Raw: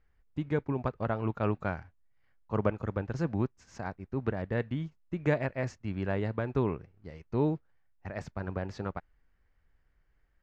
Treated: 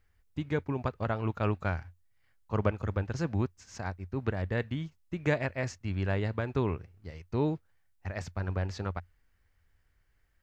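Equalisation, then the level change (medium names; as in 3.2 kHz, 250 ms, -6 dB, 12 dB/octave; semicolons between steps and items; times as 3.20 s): peaking EQ 88 Hz +10.5 dB 0.37 oct; treble shelf 2.3 kHz +10 dB; -1.5 dB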